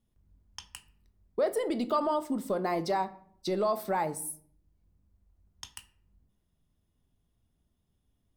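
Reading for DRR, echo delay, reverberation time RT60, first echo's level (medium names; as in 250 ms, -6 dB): 10.5 dB, no echo, 0.60 s, no echo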